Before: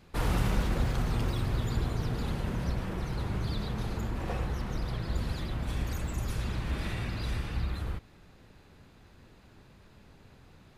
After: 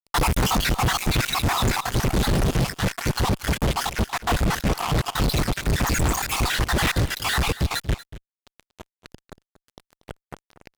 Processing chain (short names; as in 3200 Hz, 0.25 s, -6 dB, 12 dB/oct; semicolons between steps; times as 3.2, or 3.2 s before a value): random spectral dropouts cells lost 60%; reverb removal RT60 0.93 s; 1.86–3.22 bell 950 Hz -9 dB 0.84 oct; fuzz box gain 53 dB, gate -50 dBFS; echo 0.235 s -16 dB; gain -5 dB